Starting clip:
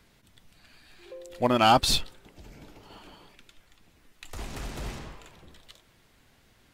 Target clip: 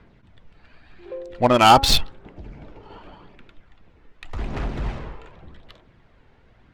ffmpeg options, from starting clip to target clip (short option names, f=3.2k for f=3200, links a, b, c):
-af "aphaser=in_gain=1:out_gain=1:delay=2.3:decay=0.33:speed=0.87:type=sinusoidal,adynamicsmooth=sensitivity=3.5:basefreq=2.1k,bandreject=f=273.4:t=h:w=4,bandreject=f=546.8:t=h:w=4,bandreject=f=820.2:t=h:w=4,bandreject=f=1.0936k:t=h:w=4,bandreject=f=1.367k:t=h:w=4,bandreject=f=1.6404k:t=h:w=4,volume=7dB"